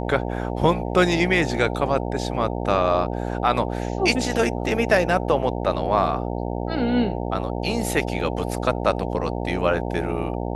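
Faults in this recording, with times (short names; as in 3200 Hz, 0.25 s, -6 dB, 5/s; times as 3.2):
buzz 60 Hz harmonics 15 -27 dBFS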